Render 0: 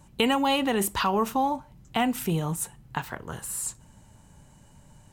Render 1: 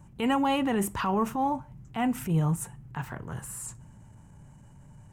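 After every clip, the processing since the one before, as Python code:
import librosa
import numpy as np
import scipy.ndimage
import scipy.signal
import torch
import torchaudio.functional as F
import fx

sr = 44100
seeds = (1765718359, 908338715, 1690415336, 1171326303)

y = fx.graphic_eq_10(x, sr, hz=(125, 500, 4000, 16000), db=(7, -3, -11, -10))
y = fx.transient(y, sr, attack_db=-8, sustain_db=1)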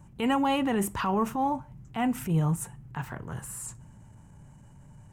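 y = x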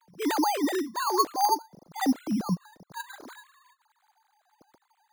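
y = fx.sine_speech(x, sr)
y = np.repeat(scipy.signal.resample_poly(y, 1, 8), 8)[:len(y)]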